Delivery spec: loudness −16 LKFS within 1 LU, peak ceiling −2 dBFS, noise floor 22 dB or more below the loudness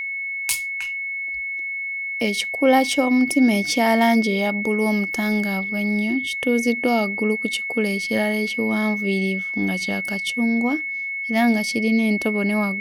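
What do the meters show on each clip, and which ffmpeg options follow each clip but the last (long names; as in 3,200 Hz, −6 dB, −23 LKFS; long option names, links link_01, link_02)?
interfering tone 2,200 Hz; level of the tone −25 dBFS; integrated loudness −21.0 LKFS; sample peak −5.5 dBFS; target loudness −16.0 LKFS
→ -af "bandreject=frequency=2200:width=30"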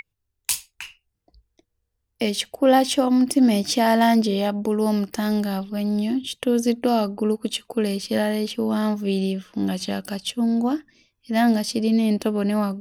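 interfering tone none found; integrated loudness −22.0 LKFS; sample peak −6.5 dBFS; target loudness −16.0 LKFS
→ -af "volume=6dB,alimiter=limit=-2dB:level=0:latency=1"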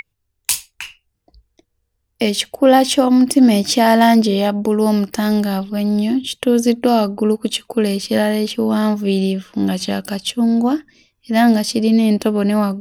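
integrated loudness −16.0 LKFS; sample peak −2.0 dBFS; background noise floor −72 dBFS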